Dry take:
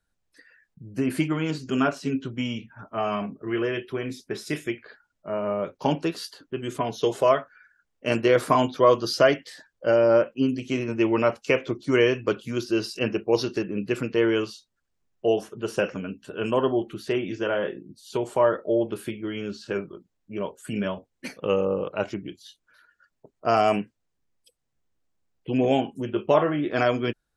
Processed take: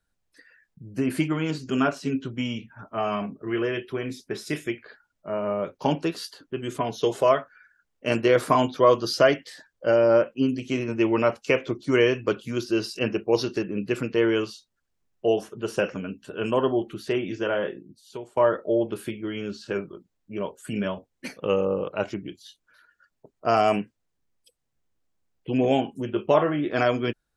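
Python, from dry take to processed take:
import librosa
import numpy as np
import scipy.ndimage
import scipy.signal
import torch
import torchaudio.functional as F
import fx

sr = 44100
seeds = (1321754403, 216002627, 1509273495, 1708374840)

y = fx.edit(x, sr, fx.fade_out_to(start_s=17.6, length_s=0.77, floor_db=-18.5), tone=tone)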